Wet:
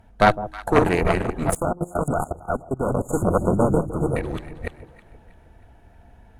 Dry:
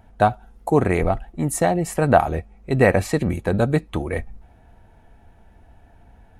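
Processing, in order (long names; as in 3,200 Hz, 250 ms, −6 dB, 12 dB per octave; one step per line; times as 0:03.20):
delay that plays each chunk backwards 260 ms, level −2 dB
harmonic generator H 6 −10 dB, 8 −22 dB, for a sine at 0 dBFS
notch filter 780 Hz, Q 21
hum removal 156.4 Hz, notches 2
on a send: delay that swaps between a low-pass and a high-pass 159 ms, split 920 Hz, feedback 63%, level −13 dB
0:01.51–0:03.09: on the sum: output level in coarse steps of 20 dB
0:01.56–0:04.16: time-frequency box erased 1,500–6,500 Hz
level −1.5 dB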